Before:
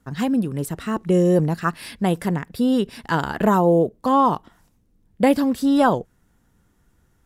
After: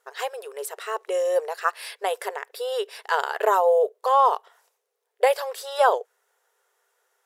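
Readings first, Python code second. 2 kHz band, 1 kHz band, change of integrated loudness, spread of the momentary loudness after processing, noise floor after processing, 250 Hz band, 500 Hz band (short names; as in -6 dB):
0.0 dB, 0.0 dB, -3.5 dB, 13 LU, -78 dBFS, under -30 dB, -1.0 dB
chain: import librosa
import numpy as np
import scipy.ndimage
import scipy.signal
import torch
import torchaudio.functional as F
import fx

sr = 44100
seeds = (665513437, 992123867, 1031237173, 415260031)

y = fx.brickwall_highpass(x, sr, low_hz=390.0)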